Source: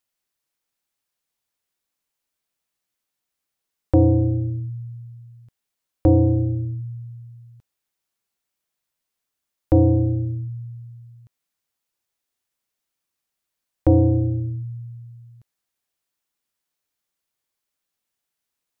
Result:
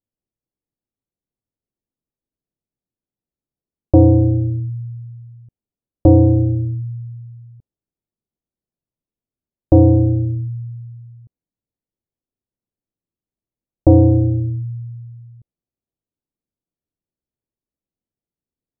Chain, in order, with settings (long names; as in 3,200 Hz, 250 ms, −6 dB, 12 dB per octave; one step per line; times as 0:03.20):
low-pass that shuts in the quiet parts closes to 340 Hz, open at −15 dBFS
level +5.5 dB